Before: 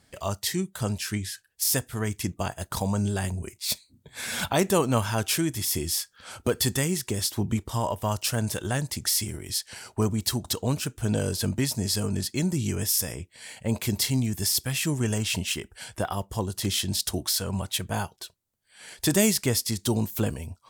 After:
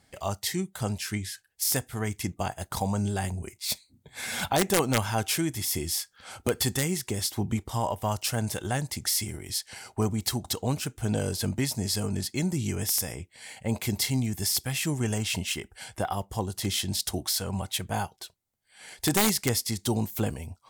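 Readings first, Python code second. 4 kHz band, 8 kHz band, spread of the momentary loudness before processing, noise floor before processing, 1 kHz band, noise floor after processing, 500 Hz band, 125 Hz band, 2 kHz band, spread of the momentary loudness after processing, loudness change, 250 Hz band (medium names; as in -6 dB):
-1.5 dB, -2.0 dB, 8 LU, -65 dBFS, +1.0 dB, -67 dBFS, -2.0 dB, -2.0 dB, -0.5 dB, 8 LU, -1.5 dB, -2.0 dB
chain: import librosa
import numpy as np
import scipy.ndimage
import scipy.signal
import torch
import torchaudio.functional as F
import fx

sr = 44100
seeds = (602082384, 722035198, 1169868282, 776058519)

y = (np.mod(10.0 ** (12.0 / 20.0) * x + 1.0, 2.0) - 1.0) / 10.0 ** (12.0 / 20.0)
y = fx.small_body(y, sr, hz=(780.0, 2100.0), ring_ms=30, db=7)
y = y * librosa.db_to_amplitude(-2.0)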